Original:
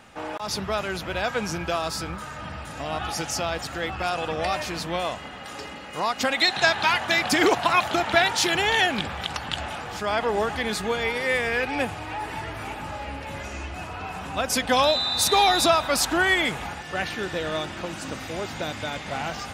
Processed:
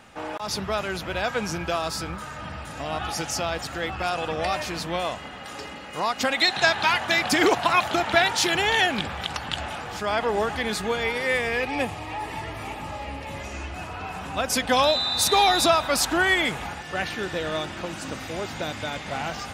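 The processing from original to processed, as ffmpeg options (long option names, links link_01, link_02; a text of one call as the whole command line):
ffmpeg -i in.wav -filter_complex "[0:a]asettb=1/sr,asplit=3[link_01][link_02][link_03];[link_01]atrim=end=11.394[link_04];[link_02]atrim=start=11.39:end=13.54,asetpts=PTS-STARTPTS,afade=type=in:duration=0.004:curve=qsin,afade=type=out:start_time=2.146:duration=0.004:curve=qsin,bandreject=frequency=1500:width=5.7[link_05];[link_03]atrim=start=13.536[link_06];[link_04][link_05]acrossfade=duration=0.004:curve1=hsin:curve2=qsin[link_07];[link_07][link_06]acrossfade=duration=0.004:curve1=qsin:curve2=hsin" out.wav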